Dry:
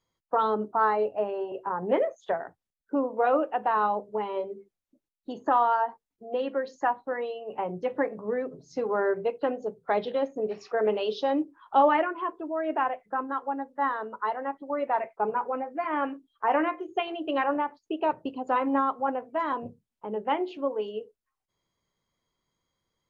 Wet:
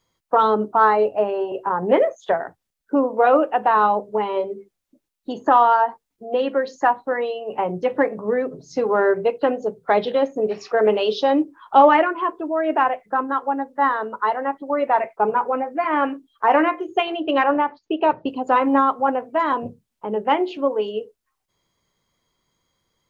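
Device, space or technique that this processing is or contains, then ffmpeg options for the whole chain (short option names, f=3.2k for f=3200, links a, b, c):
exciter from parts: -filter_complex "[0:a]asettb=1/sr,asplit=3[a][b][c];[a]atrim=end=17.204[d];[b]atrim=start=17.2:end=18.28,asetpts=PTS-STARTPTS,afade=t=in:d=0.004:c=qsin,afade=t=out:st=1.076:d=0.004:c=qsin,lowpass=f=5.1k:w=0.5412,lowpass=f=5.1k:w=1.3066[e];[c]atrim=start=18.276[f];[d][e]acrossfade=d=0.004:c1=hsin:c2=qsin[g];[g][f]acrossfade=d=0.004:c1=qsin:c2=hsin,asplit=2[h][i];[i]highpass=f=2.3k:p=1,asoftclip=type=tanh:threshold=-28dB,volume=-11dB[j];[h][j]amix=inputs=2:normalize=0,volume=8dB"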